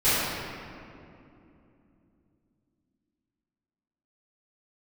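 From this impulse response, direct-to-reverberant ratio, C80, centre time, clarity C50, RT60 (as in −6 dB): −18.0 dB, −2.0 dB, 160 ms, −4.0 dB, 2.8 s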